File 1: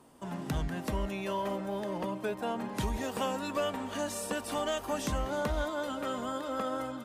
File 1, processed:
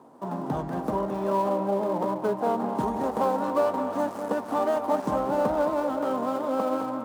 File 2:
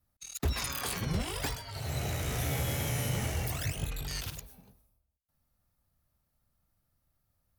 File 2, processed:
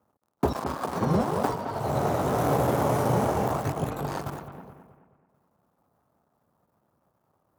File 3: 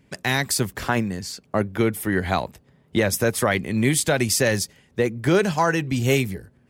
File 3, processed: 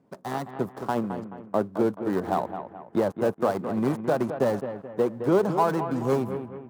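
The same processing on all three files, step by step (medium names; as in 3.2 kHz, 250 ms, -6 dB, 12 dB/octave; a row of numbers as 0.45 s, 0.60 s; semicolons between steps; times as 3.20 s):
dead-time distortion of 0.2 ms; high-pass 190 Hz 12 dB/octave; resonant high shelf 1.5 kHz -13.5 dB, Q 1.5; on a send: bucket-brigade echo 215 ms, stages 4096, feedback 41%, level -9.5 dB; on the sum: normalise loudness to -27 LUFS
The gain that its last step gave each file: +8.0 dB, +13.0 dB, -2.5 dB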